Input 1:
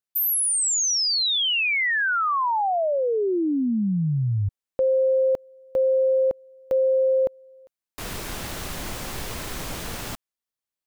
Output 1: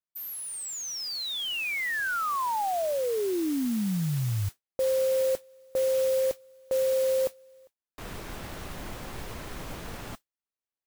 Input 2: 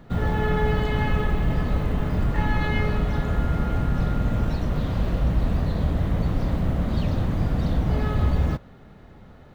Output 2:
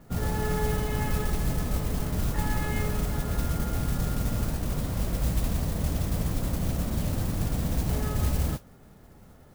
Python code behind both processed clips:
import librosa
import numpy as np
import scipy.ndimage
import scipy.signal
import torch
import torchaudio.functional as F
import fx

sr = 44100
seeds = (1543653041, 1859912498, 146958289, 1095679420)

y = fx.high_shelf(x, sr, hz=3600.0, db=-10.5)
y = fx.mod_noise(y, sr, seeds[0], snr_db=15)
y = y * 10.0 ** (-5.0 / 20.0)